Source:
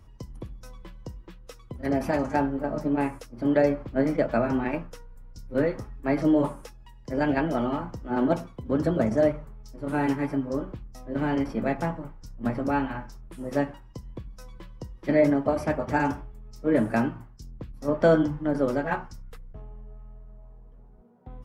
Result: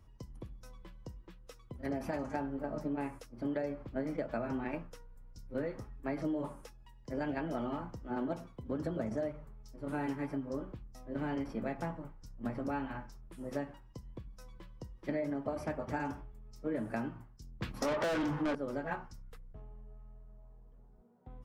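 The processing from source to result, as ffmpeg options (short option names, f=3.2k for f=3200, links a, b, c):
-filter_complex "[0:a]asettb=1/sr,asplit=3[a][b][c];[a]atrim=end=17.624[d];[b]atrim=start=17.62:end=18.55,asetpts=PTS-STARTPTS,afade=t=in:d=0.004:c=qsin,afade=t=out:st=0.926:d=0.004:c=qsin,asplit=2[e][f];[f]highpass=f=720:p=1,volume=33dB,asoftclip=type=tanh:threshold=-7.5dB[g];[e][g]amix=inputs=2:normalize=0,lowpass=f=4.9k:p=1,volume=-6dB[h];[c]atrim=start=18.546[i];[d][h]acrossfade=d=0.004:c1=hsin:c2=qsin[j];[j][i]acrossfade=d=0.004:c1=qsin:c2=hsin,acompressor=threshold=-24dB:ratio=6,volume=-8dB"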